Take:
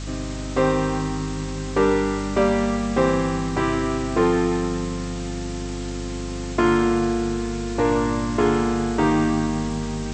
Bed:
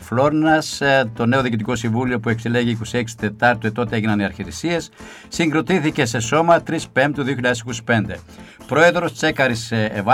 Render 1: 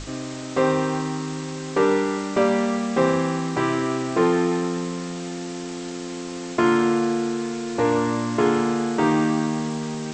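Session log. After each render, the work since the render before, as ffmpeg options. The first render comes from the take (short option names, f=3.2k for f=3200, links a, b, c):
-af "bandreject=f=50:t=h:w=6,bandreject=f=100:t=h:w=6,bandreject=f=150:t=h:w=6,bandreject=f=200:t=h:w=6,bandreject=f=250:t=h:w=6,bandreject=f=300:t=h:w=6"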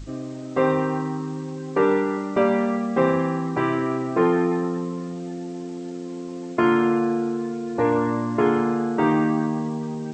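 -af "afftdn=nr=13:nf=-32"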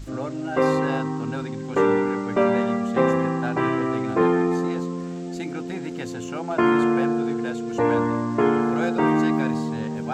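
-filter_complex "[1:a]volume=-17dB[a];[0:a][a]amix=inputs=2:normalize=0"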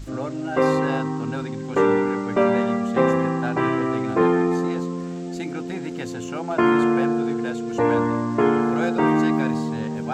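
-af "volume=1dB"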